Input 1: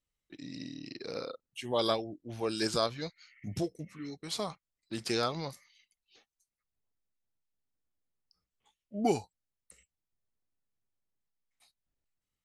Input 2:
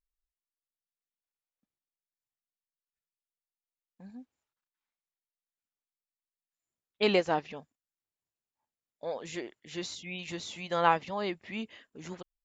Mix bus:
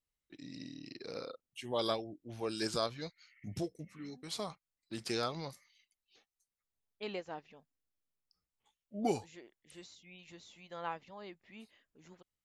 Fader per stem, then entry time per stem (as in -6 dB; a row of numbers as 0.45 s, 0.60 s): -4.5 dB, -15.5 dB; 0.00 s, 0.00 s